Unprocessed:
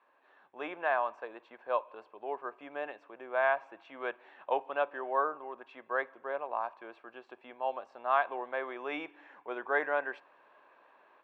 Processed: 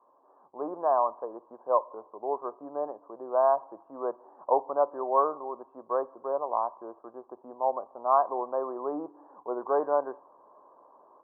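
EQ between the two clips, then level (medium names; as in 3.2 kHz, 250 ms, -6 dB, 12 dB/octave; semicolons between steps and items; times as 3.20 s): elliptic low-pass 1.1 kHz, stop band 50 dB; +7.0 dB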